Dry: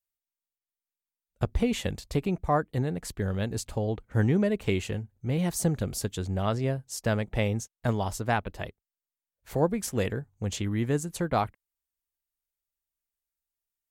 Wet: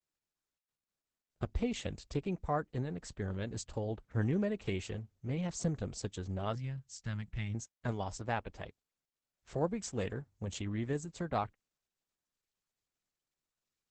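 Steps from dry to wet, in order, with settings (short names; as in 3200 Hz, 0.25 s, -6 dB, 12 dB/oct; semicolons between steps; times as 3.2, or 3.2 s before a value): 6.55–7.55 EQ curve 180 Hz 0 dB, 440 Hz -20 dB, 2000 Hz -3 dB; gain -7.5 dB; Opus 10 kbps 48000 Hz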